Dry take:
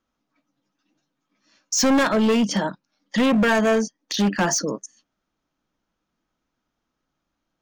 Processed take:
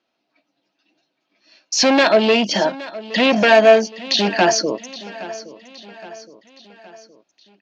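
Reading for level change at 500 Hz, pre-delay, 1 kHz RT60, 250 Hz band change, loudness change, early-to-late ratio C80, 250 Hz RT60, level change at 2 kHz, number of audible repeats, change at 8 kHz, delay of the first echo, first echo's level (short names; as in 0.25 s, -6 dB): +8.5 dB, none, none, -0.5 dB, +5.5 dB, none, none, +6.5 dB, 3, +0.5 dB, 0.818 s, -17.5 dB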